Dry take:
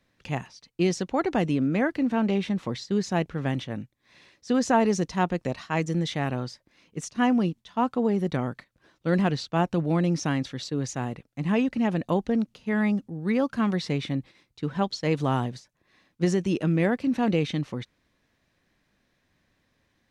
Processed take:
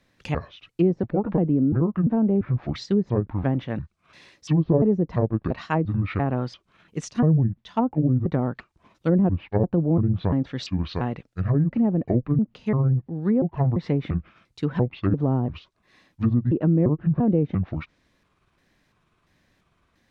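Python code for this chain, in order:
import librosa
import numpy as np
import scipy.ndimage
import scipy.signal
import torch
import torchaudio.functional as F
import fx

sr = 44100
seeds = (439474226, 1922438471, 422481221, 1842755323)

y = fx.pitch_trill(x, sr, semitones=-8.0, every_ms=344)
y = fx.env_lowpass_down(y, sr, base_hz=490.0, full_db=-21.0)
y = y * librosa.db_to_amplitude(4.5)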